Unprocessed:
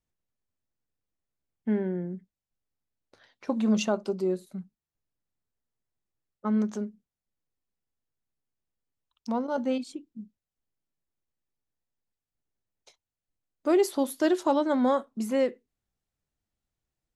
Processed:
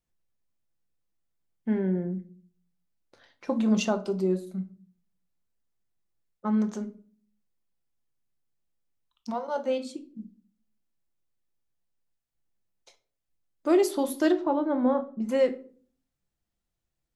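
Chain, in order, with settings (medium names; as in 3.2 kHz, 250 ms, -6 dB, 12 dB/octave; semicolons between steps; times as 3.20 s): 9.30–9.96 s: high-pass 600 Hz -> 170 Hz 24 dB/octave; 14.32–15.29 s: tape spacing loss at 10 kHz 41 dB; simulated room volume 360 m³, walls furnished, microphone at 0.8 m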